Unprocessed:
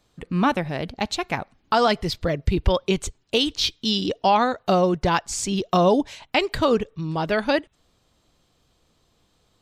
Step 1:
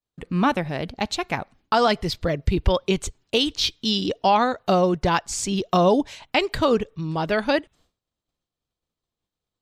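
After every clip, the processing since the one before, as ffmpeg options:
ffmpeg -i in.wav -af "agate=range=-33dB:threshold=-50dB:ratio=3:detection=peak" out.wav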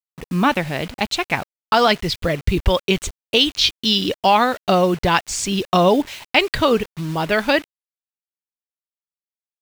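ffmpeg -i in.wav -af "acrusher=bits=6:mix=0:aa=0.000001,adynamicequalizer=threshold=0.0158:dfrequency=2500:dqfactor=0.91:tfrequency=2500:tqfactor=0.91:attack=5:release=100:ratio=0.375:range=3:mode=boostabove:tftype=bell,volume=2.5dB" out.wav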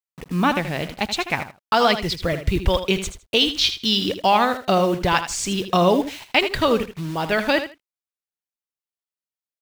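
ffmpeg -i in.wav -af "aecho=1:1:79|158:0.299|0.0508,volume=-2.5dB" out.wav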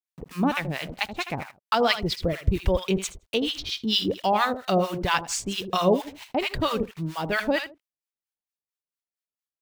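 ffmpeg -i in.wav -filter_complex "[0:a]acrossover=split=810[link_01][link_02];[link_01]aeval=exprs='val(0)*(1-1/2+1/2*cos(2*PI*4.4*n/s))':channel_layout=same[link_03];[link_02]aeval=exprs='val(0)*(1-1/2-1/2*cos(2*PI*4.4*n/s))':channel_layout=same[link_04];[link_03][link_04]amix=inputs=2:normalize=0" out.wav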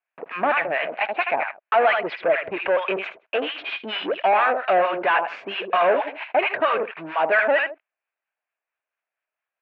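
ffmpeg -i in.wav -filter_complex "[0:a]asplit=2[link_01][link_02];[link_02]highpass=frequency=720:poles=1,volume=28dB,asoftclip=type=tanh:threshold=-4.5dB[link_03];[link_01][link_03]amix=inputs=2:normalize=0,lowpass=frequency=1400:poles=1,volume=-6dB,highpass=480,equalizer=frequency=650:width_type=q:width=4:gain=7,equalizer=frequency=1600:width_type=q:width=4:gain=6,equalizer=frequency=2500:width_type=q:width=4:gain=8,lowpass=frequency=2600:width=0.5412,lowpass=frequency=2600:width=1.3066,volume=-6dB" out.wav

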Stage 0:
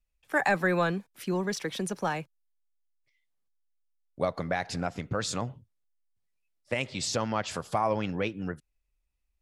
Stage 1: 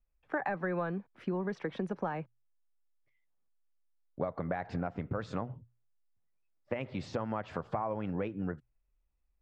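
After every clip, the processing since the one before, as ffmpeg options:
ffmpeg -i in.wav -af "lowpass=1500,acompressor=threshold=-32dB:ratio=6,bandreject=frequency=60:width_type=h:width=6,bandreject=frequency=120:width_type=h:width=6,volume=1.5dB" out.wav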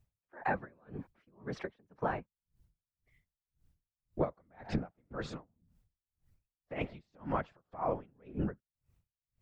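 ffmpeg -i in.wav -af "afftfilt=real='hypot(re,im)*cos(2*PI*random(0))':imag='hypot(re,im)*sin(2*PI*random(1))':win_size=512:overlap=0.75,acompressor=threshold=-50dB:ratio=1.5,aeval=exprs='val(0)*pow(10,-38*(0.5-0.5*cos(2*PI*1.9*n/s))/20)':channel_layout=same,volume=15dB" out.wav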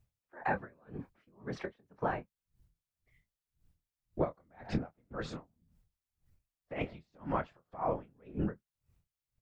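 ffmpeg -i in.wav -filter_complex "[0:a]asplit=2[link_01][link_02];[link_02]adelay=25,volume=-11dB[link_03];[link_01][link_03]amix=inputs=2:normalize=0" out.wav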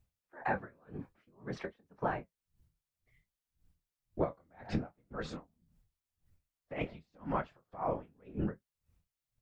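ffmpeg -i in.wav -af "flanger=delay=3.8:depth=8.1:regen=-61:speed=0.56:shape=sinusoidal,volume=3.5dB" out.wav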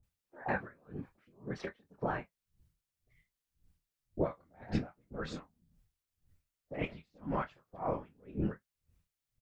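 ffmpeg -i in.wav -filter_complex "[0:a]acrossover=split=840[link_01][link_02];[link_02]adelay=30[link_03];[link_01][link_03]amix=inputs=2:normalize=0,volume=1dB" out.wav

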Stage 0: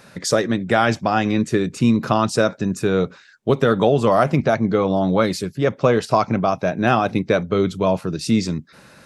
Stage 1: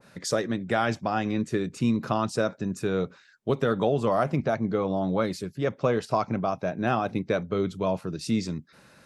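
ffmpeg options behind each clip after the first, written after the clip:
ffmpeg -i in.wav -af "adynamicequalizer=threshold=0.0251:dfrequency=1600:dqfactor=0.7:tfrequency=1600:tqfactor=0.7:attack=5:release=100:ratio=0.375:range=1.5:mode=cutabove:tftype=highshelf,volume=-8dB" out.wav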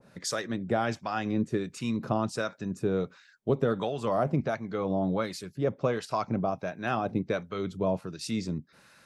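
ffmpeg -i in.wav -filter_complex "[0:a]acrossover=split=900[link_01][link_02];[link_01]aeval=exprs='val(0)*(1-0.7/2+0.7/2*cos(2*PI*1.4*n/s))':channel_layout=same[link_03];[link_02]aeval=exprs='val(0)*(1-0.7/2-0.7/2*cos(2*PI*1.4*n/s))':channel_layout=same[link_04];[link_03][link_04]amix=inputs=2:normalize=0" out.wav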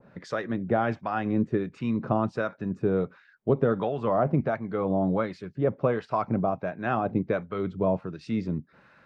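ffmpeg -i in.wav -af "lowpass=2000,volume=3dB" out.wav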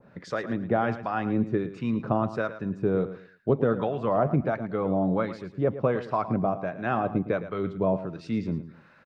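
ffmpeg -i in.wav -af "aecho=1:1:111|222|333:0.224|0.056|0.014" out.wav

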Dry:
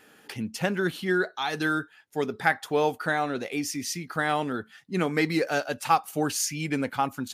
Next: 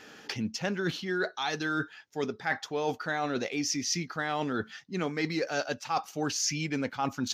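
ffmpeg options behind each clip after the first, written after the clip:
ffmpeg -i in.wav -af "highshelf=frequency=7500:width_type=q:width=3:gain=-9,areverse,acompressor=threshold=-33dB:ratio=6,areverse,volume=5dB" out.wav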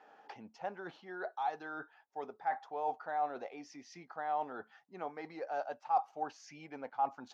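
ffmpeg -i in.wav -af "bandpass=frequency=790:width_type=q:width=3.7:csg=0,volume=1.5dB" out.wav

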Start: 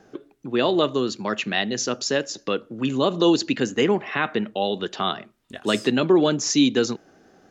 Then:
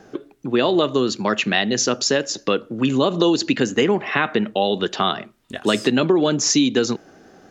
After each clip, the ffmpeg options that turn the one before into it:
ffmpeg -i in.wav -af "acompressor=threshold=-20dB:ratio=6,volume=6.5dB" out.wav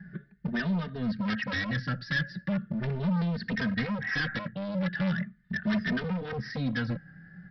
ffmpeg -i in.wav -filter_complex "[0:a]firequalizer=gain_entry='entry(110,0);entry(180,10);entry(300,-25);entry(680,-22);entry(1000,-27);entry(1700,6);entry(2500,-21)':delay=0.05:min_phase=1,aresample=11025,volume=28.5dB,asoftclip=hard,volume=-28.5dB,aresample=44100,asplit=2[link_01][link_02];[link_02]adelay=3,afreqshift=0.39[link_03];[link_01][link_03]amix=inputs=2:normalize=1,volume=4.5dB" out.wav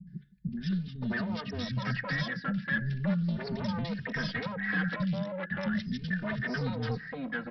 ffmpeg -i in.wav -filter_complex "[0:a]acrossover=split=250|2900[link_01][link_02][link_03];[link_03]adelay=70[link_04];[link_02]adelay=570[link_05];[link_01][link_05][link_04]amix=inputs=3:normalize=0" out.wav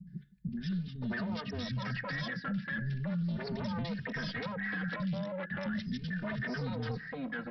ffmpeg -i in.wav -af "alimiter=level_in=3dB:limit=-24dB:level=0:latency=1:release=11,volume=-3dB,areverse,acompressor=mode=upward:threshold=-42dB:ratio=2.5,areverse,volume=-1.5dB" out.wav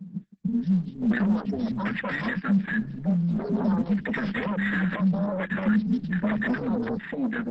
ffmpeg -i in.wav -af "afwtdn=0.00794,lowshelf=frequency=160:width_type=q:width=3:gain=-7.5,volume=8.5dB" -ar 48000 -c:a libopus -b:a 10k out.opus

